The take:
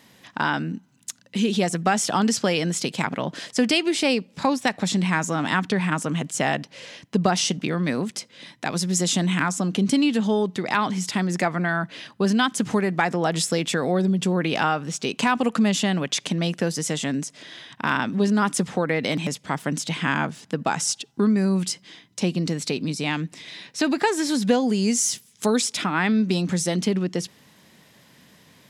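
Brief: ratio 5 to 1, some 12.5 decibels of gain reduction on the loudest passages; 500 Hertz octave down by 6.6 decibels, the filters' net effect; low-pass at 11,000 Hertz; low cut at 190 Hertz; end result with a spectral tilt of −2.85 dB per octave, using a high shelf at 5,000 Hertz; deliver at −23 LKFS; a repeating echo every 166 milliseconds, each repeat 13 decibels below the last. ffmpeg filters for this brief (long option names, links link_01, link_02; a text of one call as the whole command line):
ffmpeg -i in.wav -af "highpass=190,lowpass=11000,equalizer=frequency=500:width_type=o:gain=-8.5,highshelf=frequency=5000:gain=7.5,acompressor=threshold=-30dB:ratio=5,aecho=1:1:166|332|498:0.224|0.0493|0.0108,volume=9.5dB" out.wav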